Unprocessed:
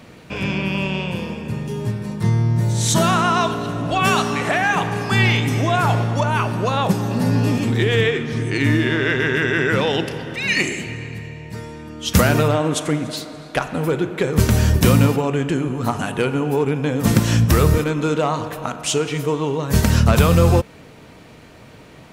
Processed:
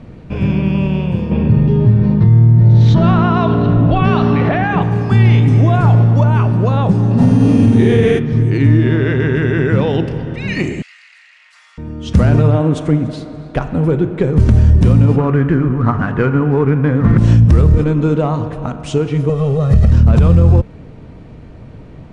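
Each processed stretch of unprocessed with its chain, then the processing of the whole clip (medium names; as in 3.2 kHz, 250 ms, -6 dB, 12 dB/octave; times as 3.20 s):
1.31–4.82 s: inverse Chebyshev low-pass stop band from 12 kHz, stop band 60 dB + level flattener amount 50%
7.17–8.18 s: mains buzz 400 Hz, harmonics 34, -35 dBFS 0 dB/octave + flutter echo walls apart 8.2 m, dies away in 1.1 s
10.82–11.78 s: comb filter that takes the minimum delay 1.5 ms + Bessel high-pass 2.1 kHz, order 6 + level flattener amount 50%
15.18–17.18 s: median filter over 9 samples + low-pass 6.6 kHz + high-order bell 1.5 kHz +10 dB 1.2 oct
19.29–19.92 s: one-bit delta coder 64 kbps, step -34 dBFS + compression 3:1, threshold -18 dBFS + comb 1.6 ms, depth 99%
whole clip: elliptic low-pass 9.8 kHz, stop band 50 dB; tilt EQ -4 dB/octave; peak limiter -2 dBFS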